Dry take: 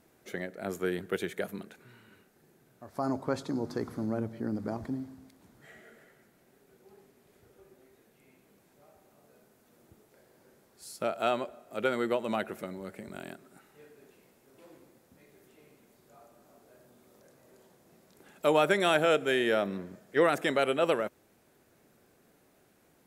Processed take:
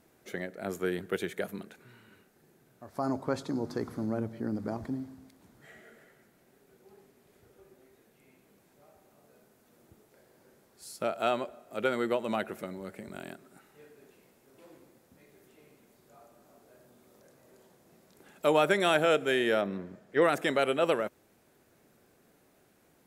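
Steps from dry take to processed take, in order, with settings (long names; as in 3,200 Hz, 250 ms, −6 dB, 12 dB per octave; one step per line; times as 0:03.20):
0:19.61–0:20.22: high-shelf EQ 5,300 Hz −10.5 dB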